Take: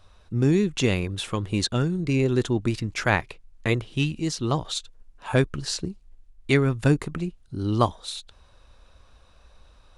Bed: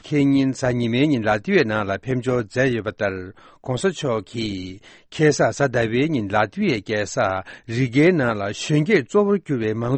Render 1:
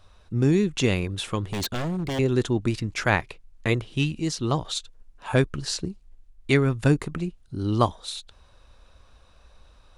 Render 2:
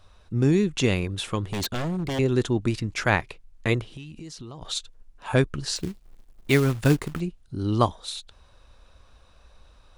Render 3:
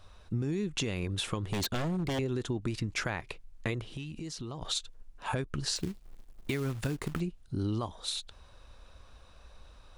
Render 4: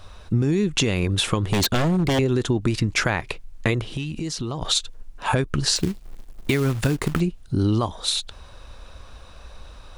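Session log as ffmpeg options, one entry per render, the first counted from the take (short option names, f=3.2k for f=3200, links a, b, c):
-filter_complex "[0:a]asettb=1/sr,asplit=3[a][b][c];[a]atrim=end=1.454[d];[b]atrim=start=1.45:end=2.19,asetpts=PTS-STARTPTS,afade=t=in:d=0.004:c=qsin,afade=t=out:st=0.736:d=0.004:c=qsin,aeval=exprs='0.075*(abs(mod(val(0)/0.075+3,4)-2)-1)':c=same[e];[c]atrim=start=2.186[f];[d][e]acrossfade=d=0.004:c1=hsin:c2=qsin[g];[g][f]acrossfade=d=0.004:c1=qsin:c2=hsin"
-filter_complex "[0:a]asettb=1/sr,asplit=3[a][b][c];[a]atrim=end=3.904[d];[b]atrim=start=3.9:end=4.62,asetpts=PTS-STARTPTS,afade=t=in:d=0.004:c=qsin,afade=t=out:st=0.716:d=0.004:c=qsin,acompressor=threshold=-36dB:ratio=12:attack=3.2:release=140:knee=1:detection=peak[e];[c]atrim=start=4.616[f];[d][e]acrossfade=d=0.004:c1=hsin:c2=qsin[g];[g][f]acrossfade=d=0.004:c1=qsin:c2=hsin,asettb=1/sr,asplit=3[h][i][j];[h]atrim=end=5.764[k];[i]atrim=start=5.76:end=7.2,asetpts=PTS-STARTPTS,afade=t=in:d=0.004:c=qsin,afade=t=out:st=1.436:d=0.004:c=qsin,acrusher=bits=4:mode=log:mix=0:aa=0.000001[l];[j]atrim=start=7.196[m];[k][l]acrossfade=d=0.004:c1=hsin:c2=qsin[n];[n][m]acrossfade=d=0.004:c1=qsin:c2=hsin"
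-af "alimiter=limit=-16.5dB:level=0:latency=1:release=147,acompressor=threshold=-29dB:ratio=6"
-af "volume=11.5dB"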